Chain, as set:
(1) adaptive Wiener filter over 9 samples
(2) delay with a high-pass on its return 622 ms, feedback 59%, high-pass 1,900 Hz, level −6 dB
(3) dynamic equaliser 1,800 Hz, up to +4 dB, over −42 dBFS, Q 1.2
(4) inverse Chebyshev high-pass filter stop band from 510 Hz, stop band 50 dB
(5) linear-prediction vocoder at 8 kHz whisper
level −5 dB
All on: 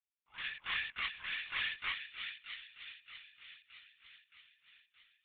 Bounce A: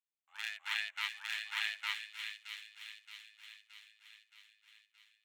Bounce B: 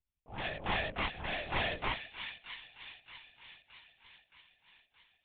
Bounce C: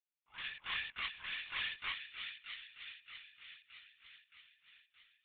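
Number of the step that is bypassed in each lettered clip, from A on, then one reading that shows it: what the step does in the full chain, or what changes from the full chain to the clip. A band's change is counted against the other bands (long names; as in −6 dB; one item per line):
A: 5, change in crest factor +4.5 dB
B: 4, 500 Hz band +24.5 dB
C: 3, change in integrated loudness −2.5 LU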